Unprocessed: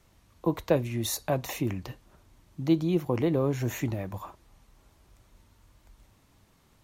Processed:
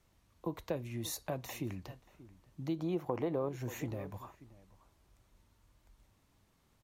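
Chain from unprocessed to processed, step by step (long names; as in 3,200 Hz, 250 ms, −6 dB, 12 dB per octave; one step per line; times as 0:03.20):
0:02.79–0:03.49: parametric band 780 Hz +11.5 dB 2.4 octaves
slap from a distant wall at 100 metres, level −19 dB
downward compressor 2.5 to 1, threshold −25 dBFS, peak gain reduction 7.5 dB
level −8.5 dB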